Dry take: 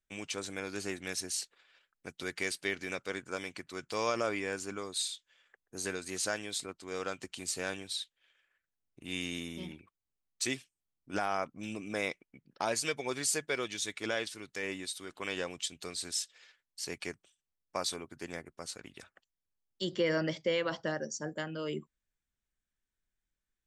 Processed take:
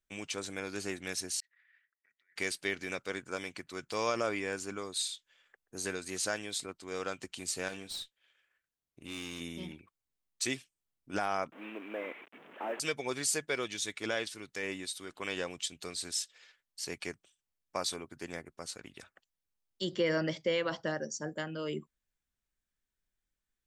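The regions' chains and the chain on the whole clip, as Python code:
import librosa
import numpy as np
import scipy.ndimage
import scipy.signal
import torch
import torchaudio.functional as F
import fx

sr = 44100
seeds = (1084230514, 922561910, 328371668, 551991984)

y = fx.chain(x, sr, fx.over_compress(threshold_db=-52.0, ratio=-1.0),
    fx.bandpass_q(hz=1900.0, q=16.0), at=(1.4, 2.36))
y = fx.chain(y, sr, fx.tube_stage(drive_db=35.0, bias=0.3),
    fx.doubler(ms=25.0, db=-11.5), at=(7.68, 9.41))
y = fx.chain(y, sr, fx.delta_mod(bps=16000, step_db=-43.5),
    fx.highpass(hz=280.0, slope=24),
    fx.quant_companded(bits=8), at=(11.52, 12.8))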